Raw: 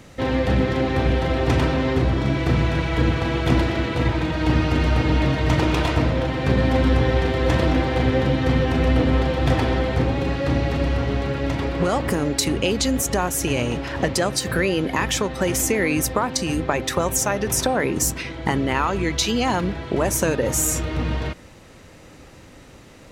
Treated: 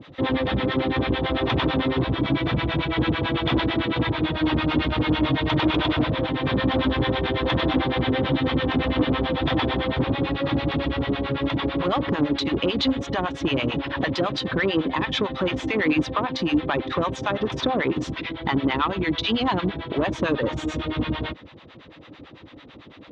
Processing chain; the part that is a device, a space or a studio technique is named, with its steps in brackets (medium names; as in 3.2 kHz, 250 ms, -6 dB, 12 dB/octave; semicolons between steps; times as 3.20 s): guitar amplifier with harmonic tremolo (harmonic tremolo 9 Hz, depth 100%, crossover 630 Hz; saturation -19.5 dBFS, distortion -13 dB; cabinet simulation 86–3800 Hz, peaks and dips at 300 Hz +6 dB, 1.1 kHz +4 dB, 3.5 kHz +10 dB); trim +3.5 dB